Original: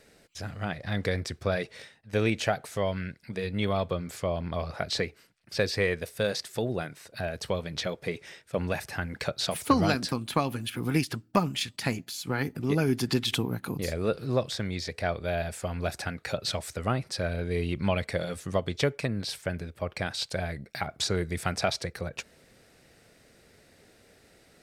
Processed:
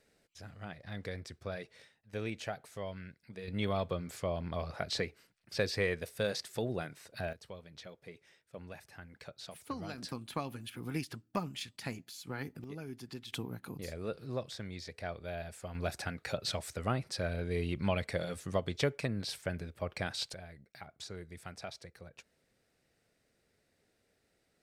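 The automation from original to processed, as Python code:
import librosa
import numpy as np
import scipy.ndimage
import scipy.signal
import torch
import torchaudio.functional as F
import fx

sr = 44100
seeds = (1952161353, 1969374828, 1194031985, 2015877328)

y = fx.gain(x, sr, db=fx.steps((0.0, -12.5), (3.48, -5.5), (7.33, -18.0), (9.98, -11.0), (12.64, -19.0), (13.34, -11.0), (15.75, -5.0), (20.34, -17.0)))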